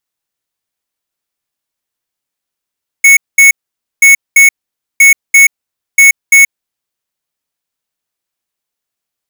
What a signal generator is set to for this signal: beep pattern square 2.21 kHz, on 0.13 s, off 0.21 s, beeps 2, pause 0.51 s, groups 4, -3.5 dBFS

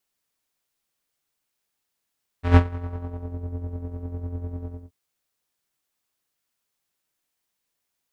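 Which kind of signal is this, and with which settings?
synth patch with tremolo F2, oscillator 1 square, detune 26 cents, noise -10 dB, filter lowpass, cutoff 420 Hz, Q 0.9, filter envelope 2.5 oct, filter decay 0.96 s, filter sustain 10%, attack 148 ms, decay 0.06 s, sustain -21 dB, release 0.24 s, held 2.24 s, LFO 10 Hz, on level 8 dB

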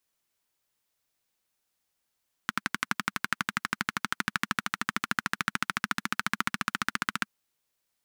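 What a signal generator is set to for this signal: single-cylinder engine model, changing speed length 4.79 s, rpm 1400, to 1800, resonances 210/1400 Hz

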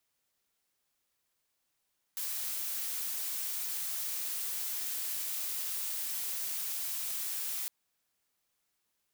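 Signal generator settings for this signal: noise blue, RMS -36 dBFS 5.51 s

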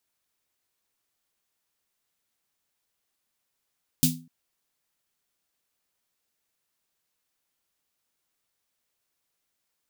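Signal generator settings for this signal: snare drum length 0.25 s, tones 160 Hz, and 250 Hz, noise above 3.2 kHz, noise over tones 2 dB, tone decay 0.39 s, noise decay 0.22 s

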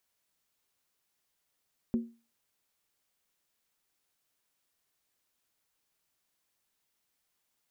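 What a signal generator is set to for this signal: skin hit, lowest mode 232 Hz, decay 0.33 s, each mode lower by 12 dB, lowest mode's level -22.5 dB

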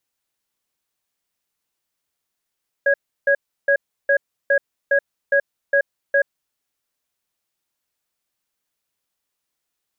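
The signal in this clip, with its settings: cadence 562 Hz, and 1.65 kHz, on 0.08 s, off 0.33 s, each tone -15.5 dBFS 3.68 s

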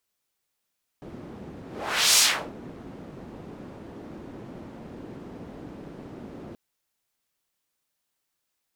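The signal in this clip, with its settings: whoosh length 5.53 s, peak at 1.16 s, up 0.55 s, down 0.36 s, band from 270 Hz, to 6.3 kHz, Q 1.1, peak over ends 24 dB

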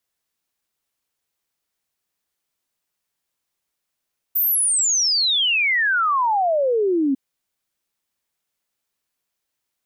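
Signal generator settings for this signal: log sweep 15 kHz -> 260 Hz 2.80 s -16 dBFS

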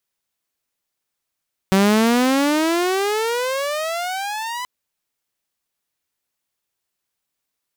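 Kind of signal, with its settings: gliding synth tone saw, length 2.93 s, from 189 Hz, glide +29 st, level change -13 dB, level -9.5 dB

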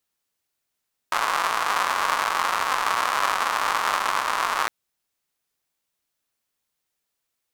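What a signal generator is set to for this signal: rain from filtered ticks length 3.56 s, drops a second 220, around 1.1 kHz, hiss -29 dB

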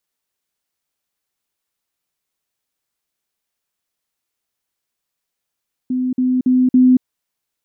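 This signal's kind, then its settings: level ladder 254 Hz -16 dBFS, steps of 3 dB, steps 4, 0.23 s 0.05 s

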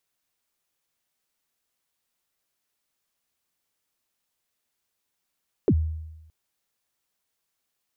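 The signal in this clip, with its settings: kick drum length 0.62 s, from 480 Hz, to 79 Hz, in 59 ms, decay 1.00 s, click off, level -14 dB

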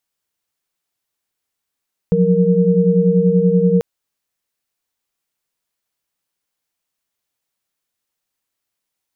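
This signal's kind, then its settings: chord F3/F#3/A#4 sine, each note -15 dBFS 1.69 s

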